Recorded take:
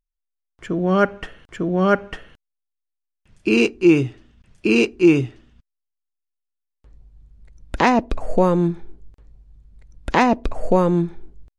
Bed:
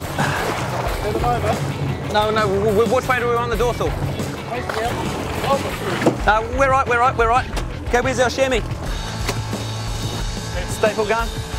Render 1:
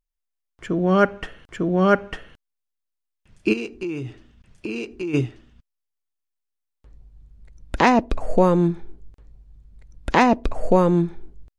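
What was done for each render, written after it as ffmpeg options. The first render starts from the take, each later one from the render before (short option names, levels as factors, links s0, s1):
-filter_complex "[0:a]asplit=3[s0][s1][s2];[s0]afade=t=out:st=3.52:d=0.02[s3];[s1]acompressor=threshold=0.0562:ratio=10:attack=3.2:release=140:knee=1:detection=peak,afade=t=in:st=3.52:d=0.02,afade=t=out:st=5.13:d=0.02[s4];[s2]afade=t=in:st=5.13:d=0.02[s5];[s3][s4][s5]amix=inputs=3:normalize=0"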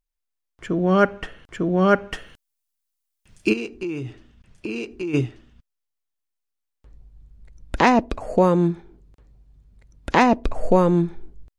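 -filter_complex "[0:a]asettb=1/sr,asplit=3[s0][s1][s2];[s0]atrim=end=2.124[s3];[s1]atrim=start=2.12:end=3.5,asetpts=PTS-STARTPTS,afade=t=in:d=0.004:c=qsin,afade=t=out:st=1.376:d=0.004:c=qsin,highshelf=f=4300:g=11.5[s4];[s2]atrim=start=3.496[s5];[s3][s4]acrossfade=d=0.004:c1=hsin:c2=qsin[s6];[s6][s5]acrossfade=d=0.004:c1=qsin:c2=hsin,asettb=1/sr,asplit=3[s7][s8][s9];[s7]atrim=end=8.094[s10];[s8]atrim=start=8.09:end=10.14,asetpts=PTS-STARTPTS,afade=t=in:d=0.004:c=qsin,afade=t=out:st=2.046:d=0.004:c=qsin,highpass=f=63:p=1[s11];[s9]atrim=start=10.136[s12];[s10][s11]acrossfade=d=0.004:c1=hsin:c2=qsin[s13];[s13][s12]acrossfade=d=0.004:c1=qsin:c2=hsin"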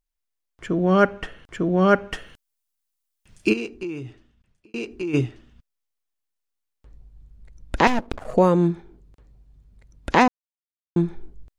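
-filter_complex "[0:a]asettb=1/sr,asplit=3[s0][s1][s2];[s0]atrim=end=7.874[s3];[s1]atrim=start=7.87:end=8.34,asetpts=PTS-STARTPTS,afade=t=in:d=0.004:c=qsin,afade=t=out:st=0.466:d=0.004:c=qsin,aeval=exprs='max(val(0),0)':c=same[s4];[s2]atrim=start=8.336[s5];[s3][s4]acrossfade=d=0.004:c1=hsin:c2=qsin[s6];[s6][s5]acrossfade=d=0.004:c1=qsin:c2=hsin,asplit=4[s7][s8][s9][s10];[s7]atrim=end=4.74,asetpts=PTS-STARTPTS,afade=t=out:st=3.61:d=1.13[s11];[s8]atrim=start=4.74:end=10.28,asetpts=PTS-STARTPTS,afade=t=in:d=0.004:c=hsin,afade=t=out:st=5.536:d=0.004:c=hsin[s12];[s9]atrim=start=10.28:end=10.96,asetpts=PTS-STARTPTS,volume=0[s13];[s10]atrim=start=10.96,asetpts=PTS-STARTPTS,afade=t=in:d=0.004:c=hsin[s14];[s11][s12][s13][s14]concat=n=4:v=0:a=1"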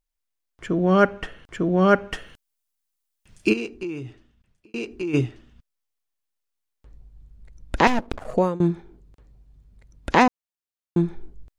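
-filter_complex "[0:a]asplit=2[s0][s1];[s0]atrim=end=8.6,asetpts=PTS-STARTPTS,afade=t=out:st=8.18:d=0.42:c=qsin:silence=0.0749894[s2];[s1]atrim=start=8.6,asetpts=PTS-STARTPTS,afade=t=in:d=0.004:c=hsin:silence=0.0749894[s3];[s2][s3]concat=n=2:v=0:a=1"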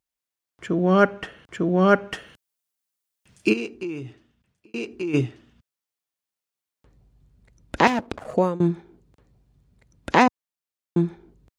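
-af "highpass=93"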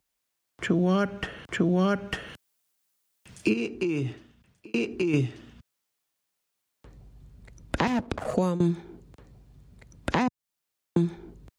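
-filter_complex "[0:a]asplit=2[s0][s1];[s1]alimiter=limit=0.188:level=0:latency=1:release=38,volume=1.41[s2];[s0][s2]amix=inputs=2:normalize=0,acrossover=split=190|3200[s3][s4][s5];[s3]acompressor=threshold=0.0447:ratio=4[s6];[s4]acompressor=threshold=0.0447:ratio=4[s7];[s5]acompressor=threshold=0.00708:ratio=4[s8];[s6][s7][s8]amix=inputs=3:normalize=0"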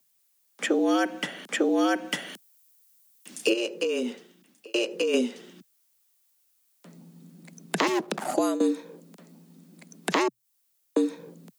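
-filter_complex "[0:a]afreqshift=120,acrossover=split=680[s0][s1];[s1]crystalizer=i=2.5:c=0[s2];[s0][s2]amix=inputs=2:normalize=0"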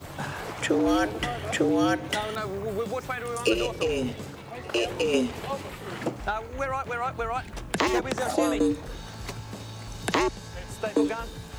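-filter_complex "[1:a]volume=0.2[s0];[0:a][s0]amix=inputs=2:normalize=0"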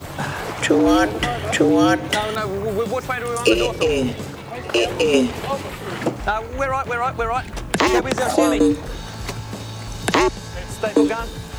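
-af "volume=2.51,alimiter=limit=0.794:level=0:latency=1"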